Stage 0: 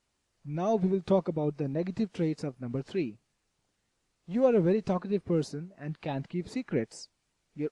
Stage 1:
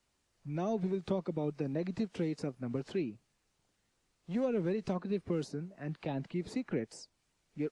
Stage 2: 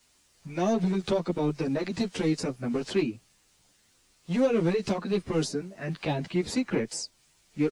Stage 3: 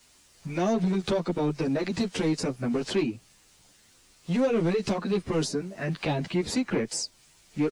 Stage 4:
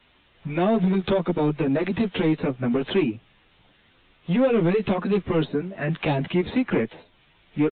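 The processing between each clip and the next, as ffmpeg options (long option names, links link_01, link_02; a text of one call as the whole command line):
ffmpeg -i in.wav -filter_complex "[0:a]acrossover=split=180|460|1100[link_01][link_02][link_03][link_04];[link_01]acompressor=threshold=-44dB:ratio=4[link_05];[link_02]acompressor=threshold=-34dB:ratio=4[link_06];[link_03]acompressor=threshold=-43dB:ratio=4[link_07];[link_04]acompressor=threshold=-49dB:ratio=4[link_08];[link_05][link_06][link_07][link_08]amix=inputs=4:normalize=0" out.wav
ffmpeg -i in.wav -filter_complex "[0:a]highshelf=frequency=2400:gain=9.5,asplit=2[link_01][link_02];[link_02]aeval=exprs='0.0376*(abs(mod(val(0)/0.0376+3,4)-2)-1)':channel_layout=same,volume=-5dB[link_03];[link_01][link_03]amix=inputs=2:normalize=0,asplit=2[link_04][link_05];[link_05]adelay=10.1,afreqshift=2.6[link_06];[link_04][link_06]amix=inputs=2:normalize=1,volume=7dB" out.wav
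ffmpeg -i in.wav -filter_complex "[0:a]asplit=2[link_01][link_02];[link_02]acompressor=threshold=-35dB:ratio=6,volume=-0.5dB[link_03];[link_01][link_03]amix=inputs=2:normalize=0,asoftclip=type=tanh:threshold=-17dB" out.wav
ffmpeg -i in.wav -af "aresample=8000,aresample=44100,volume=4.5dB" out.wav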